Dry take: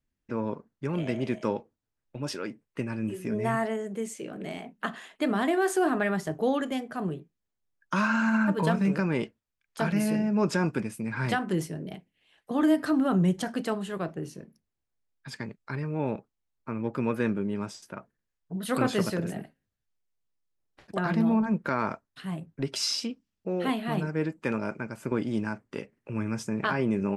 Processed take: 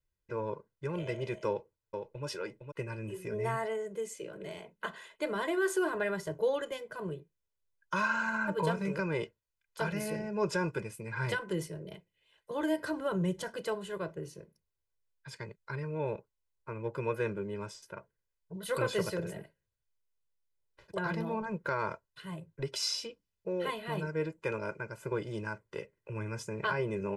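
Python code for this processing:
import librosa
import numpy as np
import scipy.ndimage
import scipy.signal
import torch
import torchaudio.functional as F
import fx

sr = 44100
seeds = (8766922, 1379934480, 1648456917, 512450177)

y = fx.echo_throw(x, sr, start_s=1.47, length_s=0.78, ms=460, feedback_pct=15, wet_db=-6.0)
y = y + 0.98 * np.pad(y, (int(2.0 * sr / 1000.0), 0))[:len(y)]
y = F.gain(torch.from_numpy(y), -7.0).numpy()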